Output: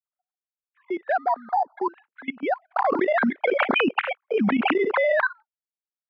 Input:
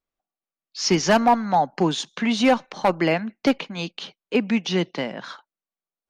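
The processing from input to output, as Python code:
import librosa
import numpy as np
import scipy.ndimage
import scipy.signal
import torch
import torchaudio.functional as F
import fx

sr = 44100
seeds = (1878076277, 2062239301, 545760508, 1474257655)

y = fx.sine_speech(x, sr)
y = fx.level_steps(y, sr, step_db=20)
y = np.repeat(scipy.signal.resample_poly(y, 1, 8), 8)[:len(y)]
y = fx.cabinet(y, sr, low_hz=210.0, low_slope=12, high_hz=2200.0, hz=(320.0, 490.0, 1400.0), db=(-7, -3, 5))
y = fx.env_flatten(y, sr, amount_pct=100, at=(2.76, 5.27))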